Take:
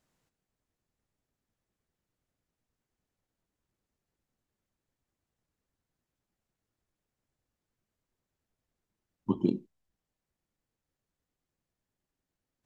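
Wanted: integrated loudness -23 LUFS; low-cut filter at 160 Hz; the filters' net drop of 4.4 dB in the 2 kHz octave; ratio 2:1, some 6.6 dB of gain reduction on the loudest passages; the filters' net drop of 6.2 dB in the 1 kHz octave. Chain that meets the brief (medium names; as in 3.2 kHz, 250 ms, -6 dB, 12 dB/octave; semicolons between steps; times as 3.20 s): high-pass 160 Hz; peaking EQ 1 kHz -5.5 dB; peaking EQ 2 kHz -5.5 dB; compression 2:1, threshold -34 dBFS; trim +16.5 dB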